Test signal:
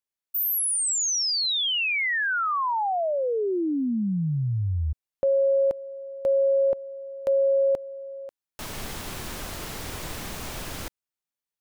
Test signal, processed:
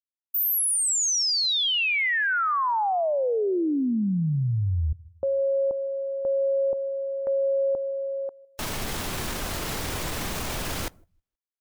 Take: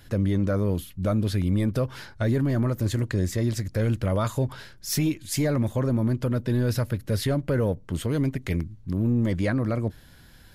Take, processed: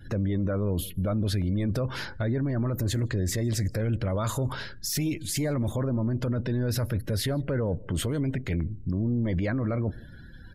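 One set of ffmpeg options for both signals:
ffmpeg -i in.wav -af "alimiter=level_in=3.5dB:limit=-24dB:level=0:latency=1:release=11,volume=-3.5dB,aecho=1:1:159|318|477:0.0708|0.0311|0.0137,afftdn=noise_reduction=27:noise_floor=-54,volume=6.5dB" out.wav

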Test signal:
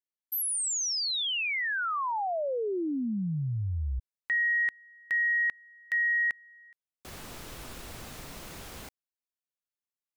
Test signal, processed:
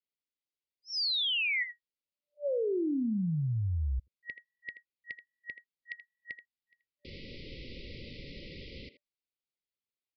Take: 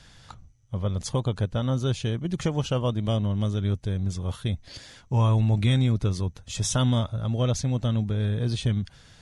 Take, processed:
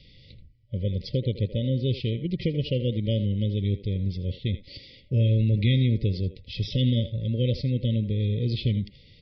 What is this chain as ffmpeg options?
ffmpeg -i in.wav -filter_complex "[0:a]asplit=2[link_01][link_02];[link_02]adelay=80,highpass=300,lowpass=3400,asoftclip=type=hard:threshold=-21dB,volume=-11dB[link_03];[link_01][link_03]amix=inputs=2:normalize=0,afftfilt=real='re*(1-between(b*sr/4096,590,1900))':imag='im*(1-between(b*sr/4096,590,1900))':win_size=4096:overlap=0.75,aresample=11025,aresample=44100" out.wav

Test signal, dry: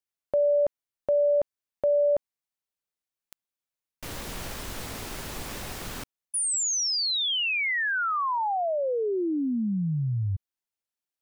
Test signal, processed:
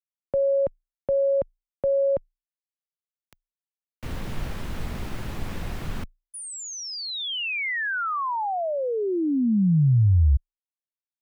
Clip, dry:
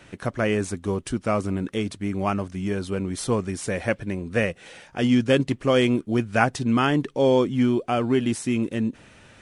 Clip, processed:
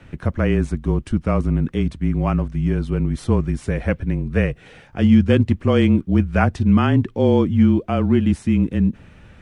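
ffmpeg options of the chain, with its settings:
ffmpeg -i in.wav -af "acrusher=bits=11:mix=0:aa=0.000001,afreqshift=-29,bass=frequency=250:gain=10,treble=frequency=4000:gain=-10" out.wav

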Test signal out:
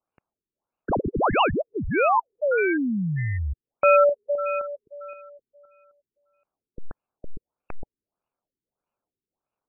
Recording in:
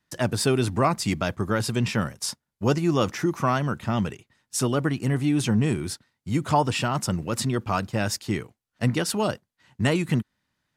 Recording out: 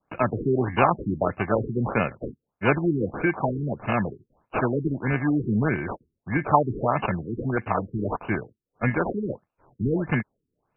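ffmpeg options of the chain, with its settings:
ffmpeg -i in.wav -filter_complex "[0:a]acrossover=split=130|1600|2300[link_01][link_02][link_03][link_04];[link_03]acompressor=threshold=-45dB:ratio=6[link_05];[link_01][link_02][link_05][link_04]amix=inputs=4:normalize=0,adynamicequalizer=threshold=0.00891:dfrequency=1500:dqfactor=2.8:tfrequency=1500:tqfactor=2.8:attack=5:release=100:ratio=0.375:range=2:mode=boostabove:tftype=bell,acrusher=samples=23:mix=1:aa=0.000001,lowshelf=frequency=500:gain=-11,aresample=22050,aresample=44100,afftfilt=real='re*lt(b*sr/1024,420*pow(3000/420,0.5+0.5*sin(2*PI*1.6*pts/sr)))':imag='im*lt(b*sr/1024,420*pow(3000/420,0.5+0.5*sin(2*PI*1.6*pts/sr)))':win_size=1024:overlap=0.75,volume=8dB" out.wav

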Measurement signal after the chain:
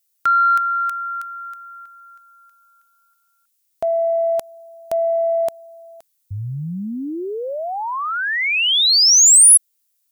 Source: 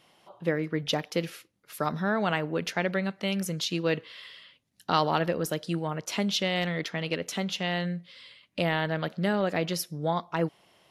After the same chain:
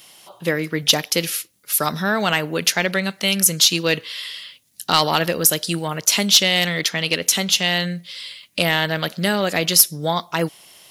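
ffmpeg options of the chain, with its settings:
ffmpeg -i in.wav -af "crystalizer=i=3:c=0,highshelf=frequency=2200:gain=7,acontrast=58,volume=-1dB" out.wav

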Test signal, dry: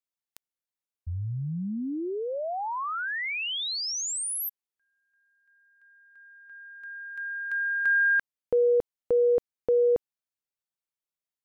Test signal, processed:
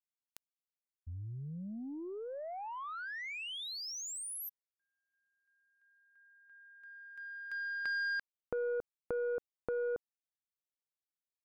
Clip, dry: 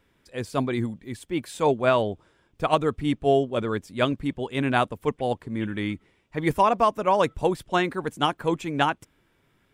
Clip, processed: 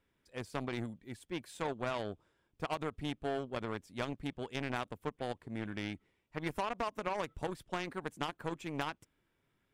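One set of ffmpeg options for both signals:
ffmpeg -i in.wav -af "aeval=exprs='0.531*(cos(1*acos(clip(val(0)/0.531,-1,1)))-cos(1*PI/2))+0.00335*(cos(4*acos(clip(val(0)/0.531,-1,1)))-cos(4*PI/2))+0.0168*(cos(5*acos(clip(val(0)/0.531,-1,1)))-cos(5*PI/2))+0.00335*(cos(6*acos(clip(val(0)/0.531,-1,1)))-cos(6*PI/2))+0.075*(cos(7*acos(clip(val(0)/0.531,-1,1)))-cos(7*PI/2))':channel_layout=same,acompressor=threshold=-36dB:ratio=6:attack=3.1:release=76:knee=6:detection=peak,volume=3dB" out.wav

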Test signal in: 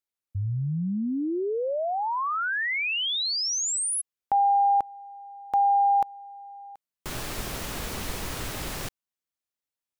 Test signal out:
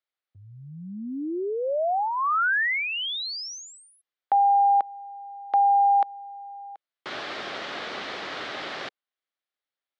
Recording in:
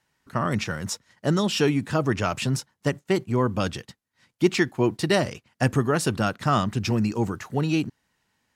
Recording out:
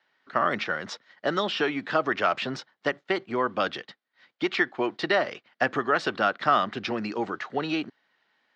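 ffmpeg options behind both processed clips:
ffmpeg -i in.wav -filter_complex "[0:a]highpass=460,equalizer=frequency=470:width_type=q:width=4:gain=-3,equalizer=frequency=950:width_type=q:width=4:gain=-6,equalizer=frequency=2600:width_type=q:width=4:gain=-5,lowpass=frequency=3900:width=0.5412,lowpass=frequency=3900:width=1.3066,acrossover=split=750|1900[link_01][link_02][link_03];[link_01]acompressor=threshold=-32dB:ratio=4[link_04];[link_02]acompressor=threshold=-25dB:ratio=4[link_05];[link_03]acompressor=threshold=-38dB:ratio=4[link_06];[link_04][link_05][link_06]amix=inputs=3:normalize=0,volume=6dB" out.wav

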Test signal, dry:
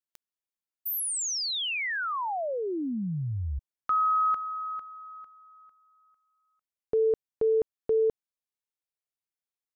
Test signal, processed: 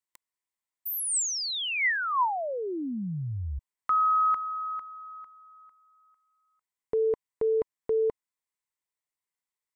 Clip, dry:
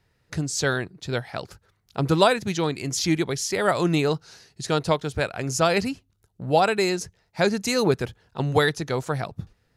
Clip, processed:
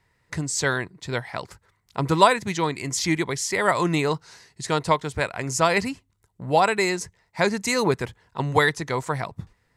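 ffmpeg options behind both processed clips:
ffmpeg -i in.wav -af "equalizer=frequency=1000:width_type=o:width=0.33:gain=10,equalizer=frequency=2000:width_type=o:width=0.33:gain=9,equalizer=frequency=8000:width_type=o:width=0.33:gain=7,volume=-1.5dB" out.wav

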